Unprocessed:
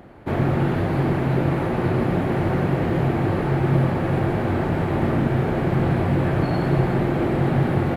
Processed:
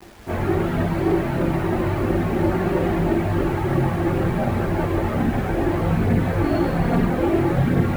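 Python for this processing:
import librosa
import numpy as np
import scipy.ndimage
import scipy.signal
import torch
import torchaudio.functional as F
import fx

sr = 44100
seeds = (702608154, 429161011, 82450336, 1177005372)

y = fx.rev_fdn(x, sr, rt60_s=3.3, lf_ratio=1.0, hf_ratio=0.7, size_ms=51.0, drr_db=8.5)
y = fx.chorus_voices(y, sr, voices=6, hz=0.3, base_ms=21, depth_ms=3.0, mix_pct=70)
y = fx.quant_dither(y, sr, seeds[0], bits=8, dither='none')
y = y * librosa.db_to_amplitude(2.0)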